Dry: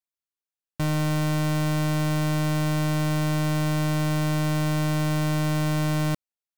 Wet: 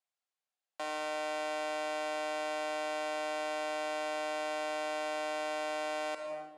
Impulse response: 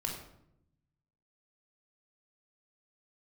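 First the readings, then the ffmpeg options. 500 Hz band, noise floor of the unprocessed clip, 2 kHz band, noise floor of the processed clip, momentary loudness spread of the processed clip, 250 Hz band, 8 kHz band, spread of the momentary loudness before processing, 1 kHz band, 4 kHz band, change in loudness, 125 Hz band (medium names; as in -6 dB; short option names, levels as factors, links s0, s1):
-2.5 dB, under -85 dBFS, -5.5 dB, under -85 dBFS, 2 LU, -21.5 dB, -11.5 dB, 1 LU, -3.0 dB, -7.5 dB, -11.0 dB, under -40 dB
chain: -filter_complex "[0:a]highpass=f=460:w=0.5412,highpass=f=460:w=1.3066,equalizer=f=720:t=q:w=4:g=8,equalizer=f=5700:t=q:w=4:g=-5,equalizer=f=8100:t=q:w=4:g=-4,lowpass=f=9000:w=0.5412,lowpass=f=9000:w=1.3066,asplit=2[s0][s1];[1:a]atrim=start_sample=2205,asetrate=24255,aresample=44100[s2];[s1][s2]afir=irnorm=-1:irlink=0,volume=0.398[s3];[s0][s3]amix=inputs=2:normalize=0,alimiter=level_in=1.12:limit=0.0631:level=0:latency=1:release=188,volume=0.891,volume=0.891"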